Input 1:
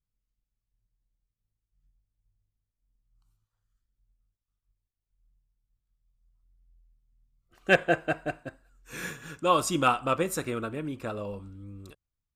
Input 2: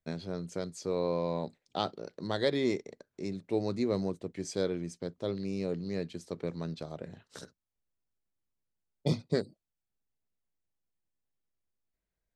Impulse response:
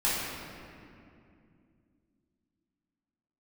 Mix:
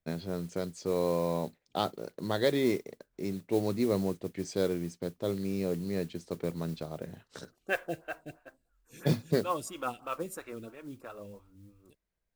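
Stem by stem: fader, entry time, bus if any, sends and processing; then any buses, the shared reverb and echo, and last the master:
-8.0 dB, 0.00 s, no send, photocell phaser 3 Hz
+2.0 dB, 0.00 s, no send, high shelf 5500 Hz -7 dB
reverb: off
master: modulation noise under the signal 22 dB

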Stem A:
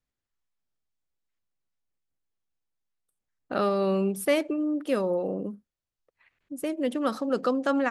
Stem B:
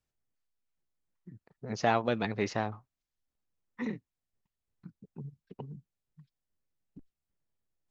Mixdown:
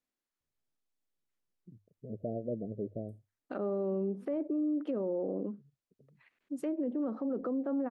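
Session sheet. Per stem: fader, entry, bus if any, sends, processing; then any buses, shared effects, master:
-3.0 dB, 0.00 s, no send, treble ducked by the level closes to 580 Hz, closed at -24 dBFS; resonant low shelf 160 Hz -13 dB, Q 1.5
-4.5 dB, 0.40 s, no send, steep low-pass 640 Hz 96 dB/oct; notches 50/100 Hz; auto duck -17 dB, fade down 0.40 s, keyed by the first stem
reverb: off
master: limiter -26.5 dBFS, peak gain reduction 9 dB

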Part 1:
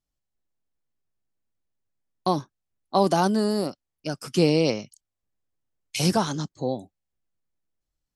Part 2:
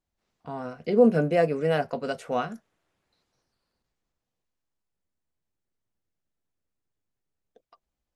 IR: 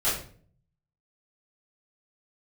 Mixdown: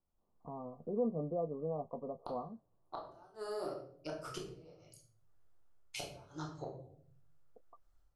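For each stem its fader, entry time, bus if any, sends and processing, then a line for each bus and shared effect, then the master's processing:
-13.5 dB, 0.00 s, send -7 dB, EQ curve 120 Hz 0 dB, 210 Hz -20 dB, 320 Hz -2 dB, 1300 Hz +5 dB, 2300 Hz -6 dB; AGC gain up to 14.5 dB; flipped gate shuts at -9 dBFS, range -36 dB
-2.0 dB, 0.00 s, no send, Chebyshev low-pass 1200 Hz, order 10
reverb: on, RT60 0.50 s, pre-delay 3 ms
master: compressor 1.5:1, threshold -56 dBFS, peak gain reduction 14.5 dB

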